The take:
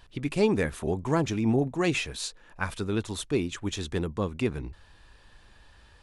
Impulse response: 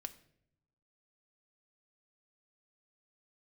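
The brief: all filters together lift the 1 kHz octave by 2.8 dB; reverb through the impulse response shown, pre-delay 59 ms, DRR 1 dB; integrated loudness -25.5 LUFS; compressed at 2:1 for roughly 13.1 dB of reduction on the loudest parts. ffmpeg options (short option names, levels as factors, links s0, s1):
-filter_complex "[0:a]equalizer=f=1000:t=o:g=3.5,acompressor=threshold=0.00631:ratio=2,asplit=2[s0][s1];[1:a]atrim=start_sample=2205,adelay=59[s2];[s1][s2]afir=irnorm=-1:irlink=0,volume=1.33[s3];[s0][s3]amix=inputs=2:normalize=0,volume=3.98"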